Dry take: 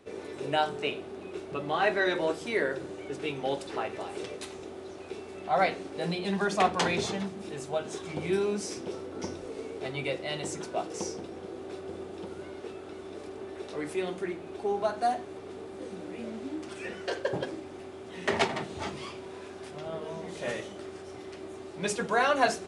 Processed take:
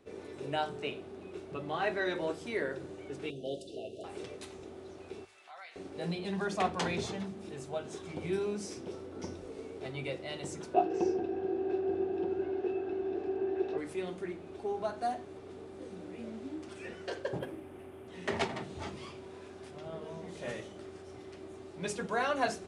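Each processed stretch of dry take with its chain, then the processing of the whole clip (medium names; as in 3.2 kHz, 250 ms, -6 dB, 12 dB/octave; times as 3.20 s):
3.30–4.04 s: Chebyshev band-stop 690–2800 Hz, order 5 + bass shelf 86 Hz -10 dB
5.25–5.76 s: high-pass 1.4 kHz + compression 3:1, threshold -42 dBFS
10.74–13.78 s: distance through air 140 m + small resonant body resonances 370/730/1600/2600 Hz, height 16 dB, ringing for 40 ms
17.39–18.08 s: CVSD coder 64 kbps + high-order bell 5.4 kHz -12.5 dB 1.2 oct
whole clip: bass shelf 210 Hz +7.5 dB; hum notches 50/100/150/200 Hz; trim -7 dB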